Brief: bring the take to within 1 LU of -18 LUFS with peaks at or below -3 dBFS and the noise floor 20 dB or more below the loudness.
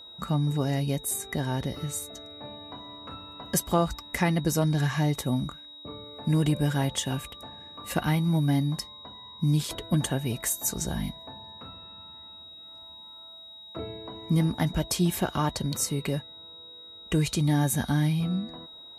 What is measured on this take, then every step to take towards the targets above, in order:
steady tone 3800 Hz; tone level -44 dBFS; loudness -27.5 LUFS; peak -10.0 dBFS; loudness target -18.0 LUFS
-> notch 3800 Hz, Q 30; gain +9.5 dB; limiter -3 dBFS

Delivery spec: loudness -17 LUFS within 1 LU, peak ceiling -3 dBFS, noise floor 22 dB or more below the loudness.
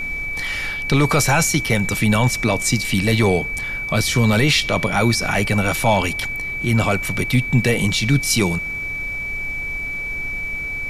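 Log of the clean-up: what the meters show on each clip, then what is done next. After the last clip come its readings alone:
steady tone 2300 Hz; tone level -24 dBFS; noise floor -27 dBFS; noise floor target -41 dBFS; loudness -19.0 LUFS; peak -5.5 dBFS; loudness target -17.0 LUFS
-> notch 2300 Hz, Q 30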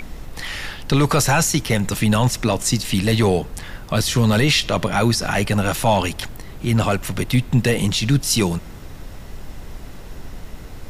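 steady tone none; noise floor -36 dBFS; noise floor target -41 dBFS
-> noise print and reduce 6 dB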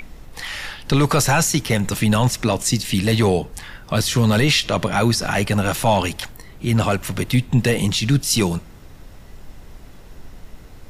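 noise floor -42 dBFS; loudness -19.0 LUFS; peak -6.0 dBFS; loudness target -17.0 LUFS
-> gain +2 dB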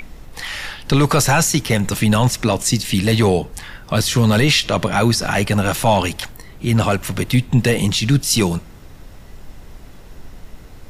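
loudness -17.0 LUFS; peak -4.0 dBFS; noise floor -40 dBFS

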